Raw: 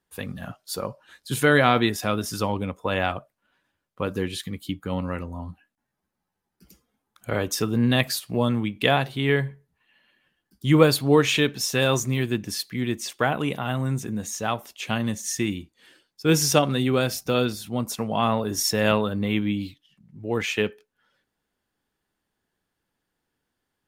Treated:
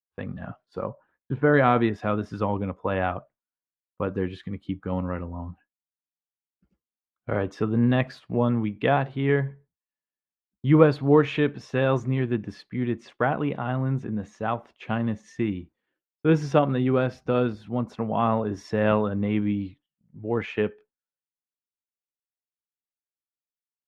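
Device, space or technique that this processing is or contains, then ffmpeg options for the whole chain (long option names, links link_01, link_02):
hearing-loss simulation: -filter_complex "[0:a]asettb=1/sr,asplit=3[link_01][link_02][link_03];[link_01]atrim=end=0.894[link_04];[link_02]atrim=start=0.89:end=1.54,asetpts=PTS-STARTPTS,afade=type=in:duration=0.004:curve=qsin,afade=type=out:start_time=0.646:duration=0.004:curve=qsin,lowpass=1400[link_05];[link_03]atrim=start=1.536[link_06];[link_04][link_05]acrossfade=duration=0.004:curve1=hsin:curve2=qsin[link_07];[link_07][link_06]acrossfade=duration=0.004:curve1=qsin:curve2=hsin,lowpass=1600,agate=range=-33dB:threshold=-45dB:ratio=3:detection=peak"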